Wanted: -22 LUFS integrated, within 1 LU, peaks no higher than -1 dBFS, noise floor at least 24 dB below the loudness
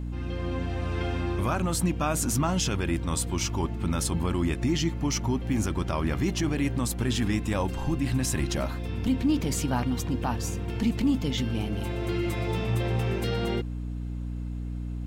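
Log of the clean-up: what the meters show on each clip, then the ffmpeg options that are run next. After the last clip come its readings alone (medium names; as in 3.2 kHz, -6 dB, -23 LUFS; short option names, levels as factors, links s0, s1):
hum 60 Hz; highest harmonic 300 Hz; hum level -30 dBFS; loudness -28.5 LUFS; peak level -15.0 dBFS; loudness target -22.0 LUFS
-> -af "bandreject=f=60:t=h:w=4,bandreject=f=120:t=h:w=4,bandreject=f=180:t=h:w=4,bandreject=f=240:t=h:w=4,bandreject=f=300:t=h:w=4"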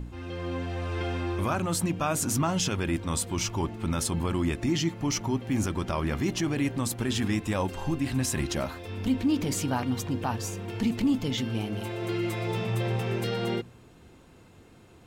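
hum not found; loudness -29.0 LUFS; peak level -15.0 dBFS; loudness target -22.0 LUFS
-> -af "volume=2.24"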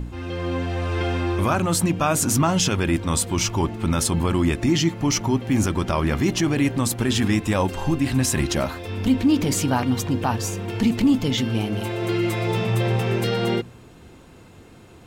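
loudness -22.0 LUFS; peak level -8.0 dBFS; noise floor -47 dBFS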